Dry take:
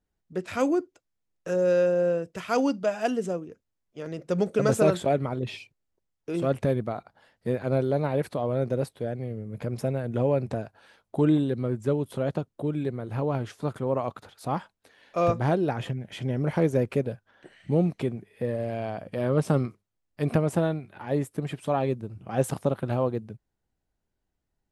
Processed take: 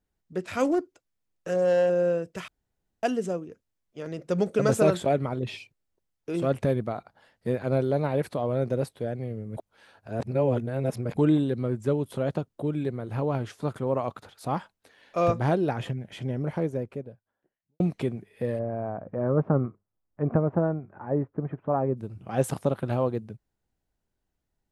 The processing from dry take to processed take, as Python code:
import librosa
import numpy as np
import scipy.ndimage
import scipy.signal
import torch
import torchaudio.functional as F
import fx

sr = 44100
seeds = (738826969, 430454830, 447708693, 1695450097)

y = fx.doppler_dist(x, sr, depth_ms=0.17, at=(0.64, 1.9))
y = fx.studio_fade_out(y, sr, start_s=15.68, length_s=2.12)
y = fx.lowpass(y, sr, hz=1400.0, slope=24, at=(18.58, 21.96), fade=0.02)
y = fx.edit(y, sr, fx.room_tone_fill(start_s=2.48, length_s=0.55),
    fx.reverse_span(start_s=9.57, length_s=1.6), tone=tone)